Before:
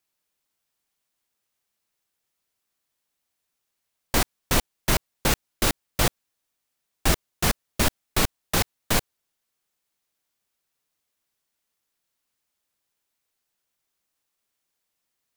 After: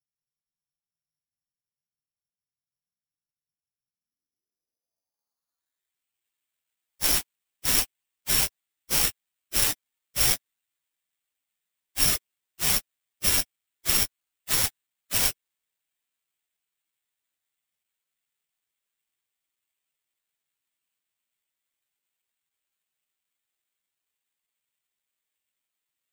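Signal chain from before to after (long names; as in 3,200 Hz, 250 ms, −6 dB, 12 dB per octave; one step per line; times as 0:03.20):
time stretch by phase vocoder 1.7×
low-pass filter sweep 150 Hz → 3,400 Hz, 0:03.74–0:06.26
bad sample-rate conversion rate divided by 8×, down none, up zero stuff
level −9 dB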